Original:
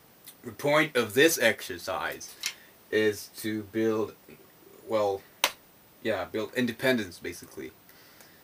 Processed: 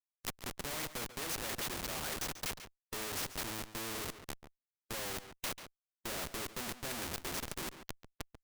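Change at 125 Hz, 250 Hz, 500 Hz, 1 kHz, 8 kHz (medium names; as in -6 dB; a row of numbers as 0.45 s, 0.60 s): -7.0 dB, -15.5 dB, -18.5 dB, -9.0 dB, -3.5 dB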